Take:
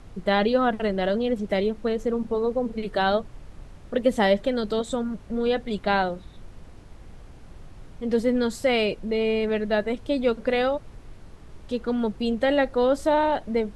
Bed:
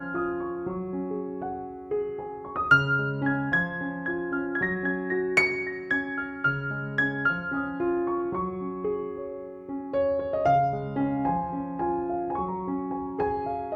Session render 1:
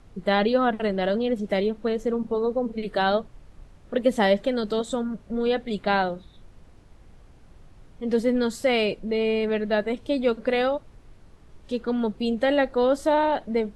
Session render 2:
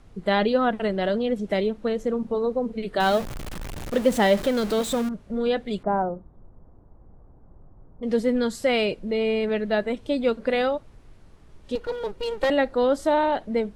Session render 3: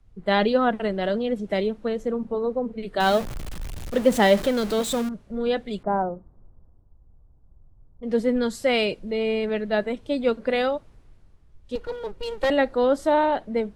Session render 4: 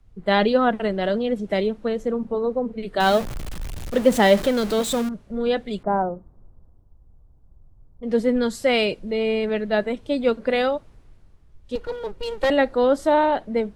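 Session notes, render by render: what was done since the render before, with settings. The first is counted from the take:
noise print and reduce 6 dB
3.00–5.09 s: jump at every zero crossing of -28.5 dBFS; 5.83–8.03 s: low-pass 1.1 kHz 24 dB/octave; 11.75–12.50 s: comb filter that takes the minimum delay 2.1 ms
three bands expanded up and down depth 40%
trim +2 dB; peak limiter -3 dBFS, peak gain reduction 1 dB

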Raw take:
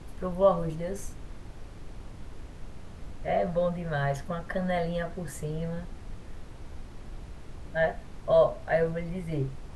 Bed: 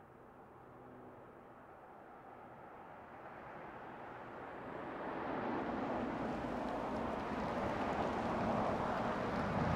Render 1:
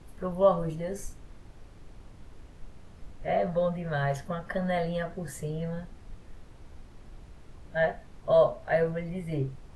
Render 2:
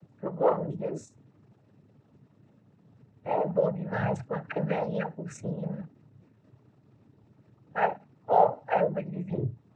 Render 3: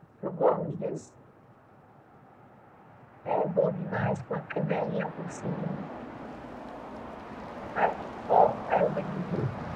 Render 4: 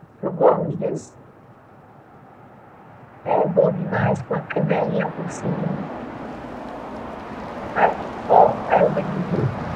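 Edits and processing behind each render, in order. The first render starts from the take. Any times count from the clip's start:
noise print and reduce 6 dB
resonances exaggerated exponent 1.5; noise-vocoded speech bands 12
add bed -1.5 dB
trim +9 dB; peak limiter -1 dBFS, peak gain reduction 2.5 dB

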